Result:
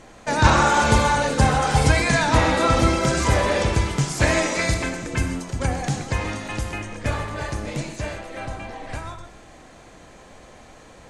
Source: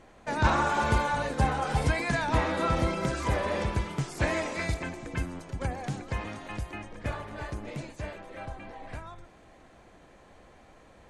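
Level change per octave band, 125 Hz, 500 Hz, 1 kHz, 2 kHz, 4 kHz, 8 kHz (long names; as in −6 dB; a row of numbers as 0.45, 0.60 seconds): +9.0, +9.0, +8.5, +9.0, +12.0, +15.5 decibels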